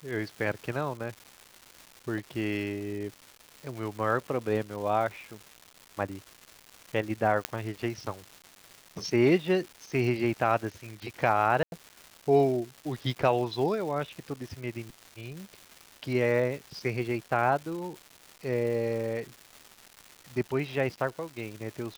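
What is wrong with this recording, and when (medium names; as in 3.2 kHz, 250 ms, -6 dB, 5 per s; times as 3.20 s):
crackle 480 per s -38 dBFS
7.45 s: pop -9 dBFS
11.63–11.72 s: dropout 91 ms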